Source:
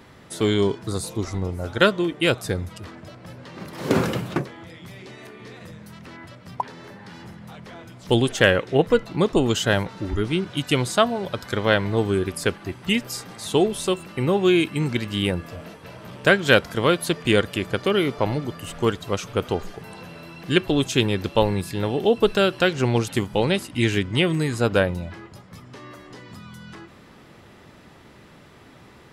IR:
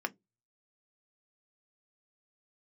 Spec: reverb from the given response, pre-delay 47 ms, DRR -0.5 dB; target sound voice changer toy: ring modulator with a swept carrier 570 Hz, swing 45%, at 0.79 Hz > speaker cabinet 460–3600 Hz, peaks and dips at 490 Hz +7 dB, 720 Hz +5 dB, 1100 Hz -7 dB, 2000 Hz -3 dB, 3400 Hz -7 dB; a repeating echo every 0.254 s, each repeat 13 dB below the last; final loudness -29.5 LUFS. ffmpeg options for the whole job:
-filter_complex "[0:a]aecho=1:1:254|508|762:0.224|0.0493|0.0108,asplit=2[a][b];[1:a]atrim=start_sample=2205,adelay=47[c];[b][c]afir=irnorm=-1:irlink=0,volume=-4dB[d];[a][d]amix=inputs=2:normalize=0,aeval=exprs='val(0)*sin(2*PI*570*n/s+570*0.45/0.79*sin(2*PI*0.79*n/s))':c=same,highpass=460,equalizer=f=490:t=q:w=4:g=7,equalizer=f=720:t=q:w=4:g=5,equalizer=f=1.1k:t=q:w=4:g=-7,equalizer=f=2k:t=q:w=4:g=-3,equalizer=f=3.4k:t=q:w=4:g=-7,lowpass=f=3.6k:w=0.5412,lowpass=f=3.6k:w=1.3066,volume=-6dB"

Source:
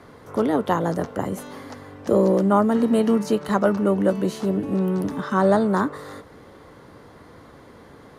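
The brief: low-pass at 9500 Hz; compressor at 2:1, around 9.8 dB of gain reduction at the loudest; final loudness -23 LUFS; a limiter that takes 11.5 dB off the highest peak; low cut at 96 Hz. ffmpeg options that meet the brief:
-af "highpass=96,lowpass=9.5k,acompressor=threshold=-32dB:ratio=2,volume=12.5dB,alimiter=limit=-14dB:level=0:latency=1"

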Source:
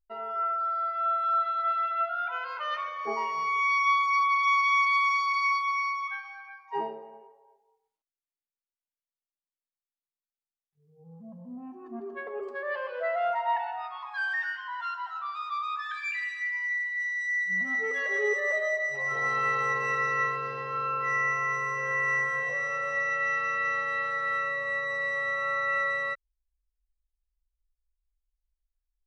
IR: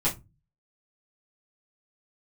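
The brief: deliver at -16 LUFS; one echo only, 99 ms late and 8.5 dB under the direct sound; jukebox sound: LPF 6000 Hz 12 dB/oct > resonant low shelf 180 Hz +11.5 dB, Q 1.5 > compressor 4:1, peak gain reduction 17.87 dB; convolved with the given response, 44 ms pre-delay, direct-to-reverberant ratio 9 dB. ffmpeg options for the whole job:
-filter_complex "[0:a]aecho=1:1:99:0.376,asplit=2[a][b];[1:a]atrim=start_sample=2205,adelay=44[c];[b][c]afir=irnorm=-1:irlink=0,volume=-18.5dB[d];[a][d]amix=inputs=2:normalize=0,lowpass=6k,lowshelf=f=180:t=q:w=1.5:g=11.5,acompressor=threshold=-40dB:ratio=4,volume=23dB"

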